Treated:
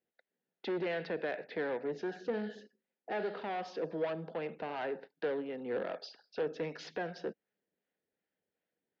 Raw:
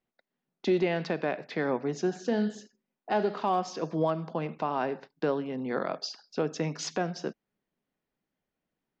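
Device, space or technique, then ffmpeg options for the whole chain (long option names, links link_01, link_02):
guitar amplifier with harmonic tremolo: -filter_complex "[0:a]acrossover=split=600[link_01][link_02];[link_01]aeval=exprs='val(0)*(1-0.5/2+0.5/2*cos(2*PI*2.6*n/s))':channel_layout=same[link_03];[link_02]aeval=exprs='val(0)*(1-0.5/2-0.5/2*cos(2*PI*2.6*n/s))':channel_layout=same[link_04];[link_03][link_04]amix=inputs=2:normalize=0,asoftclip=type=tanh:threshold=-30.5dB,highpass=100,equalizer=frequency=140:width_type=q:width=4:gain=-10,equalizer=frequency=240:width_type=q:width=4:gain=-4,equalizer=frequency=480:width_type=q:width=4:gain=7,equalizer=frequency=1100:width_type=q:width=4:gain=-9,equalizer=frequency=1700:width_type=q:width=4:gain=5,lowpass=frequency=4200:width=0.5412,lowpass=frequency=4200:width=1.3066,volume=-1.5dB"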